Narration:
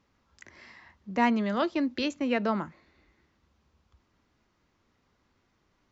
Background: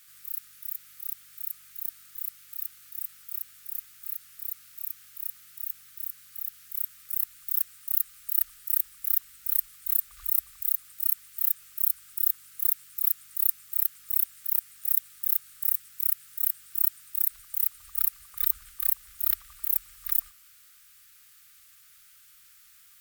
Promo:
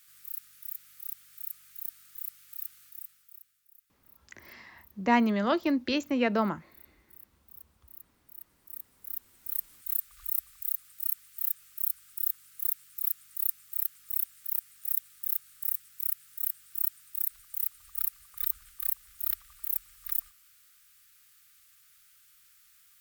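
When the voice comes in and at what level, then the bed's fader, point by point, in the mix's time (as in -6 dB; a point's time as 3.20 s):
3.90 s, +1.0 dB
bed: 2.82 s -4 dB
3.68 s -24 dB
8.25 s -24 dB
9.72 s -5 dB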